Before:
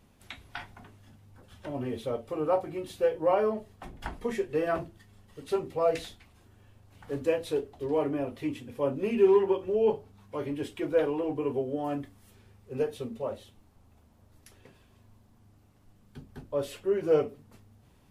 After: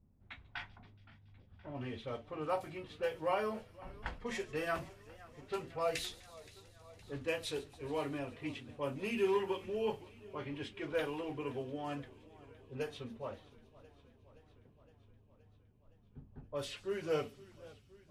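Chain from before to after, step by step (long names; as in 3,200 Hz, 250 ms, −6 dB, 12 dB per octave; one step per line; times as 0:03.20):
guitar amp tone stack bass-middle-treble 5-5-5
low-pass that shuts in the quiet parts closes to 370 Hz, open at −43.5 dBFS
on a send: delay with a high-pass on its return 140 ms, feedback 78%, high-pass 4,300 Hz, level −16.5 dB
on the sum: feedback echo with a swinging delay time 518 ms, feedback 69%, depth 129 cents, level −20.5 dB
level +9.5 dB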